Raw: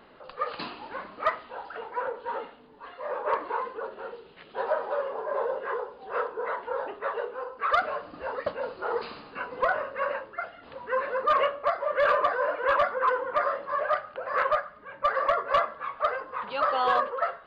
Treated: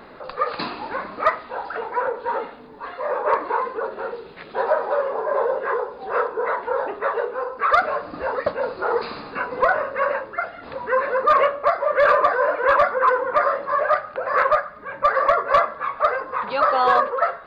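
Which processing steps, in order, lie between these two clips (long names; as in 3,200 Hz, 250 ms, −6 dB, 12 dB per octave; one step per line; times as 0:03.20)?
parametric band 3,000 Hz −11 dB 0.21 octaves
in parallel at −2 dB: downward compressor, threshold −38 dBFS, peak gain reduction 17.5 dB
on the sum: level +6 dB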